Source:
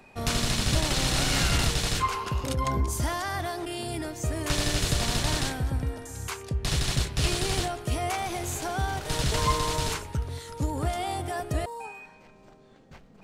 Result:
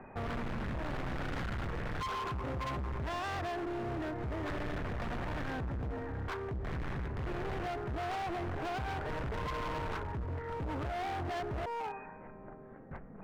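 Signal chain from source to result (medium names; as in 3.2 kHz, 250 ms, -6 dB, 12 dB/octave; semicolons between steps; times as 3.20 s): tracing distortion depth 0.089 ms; steep low-pass 1.9 kHz; in parallel at +3 dB: compression, threshold -34 dBFS, peak gain reduction 14.5 dB; on the sum: peak limiter -17 dBFS, peak gain reduction 6.5 dB; hard clipper -31.5 dBFS, distortion -6 dB; trim -3.5 dB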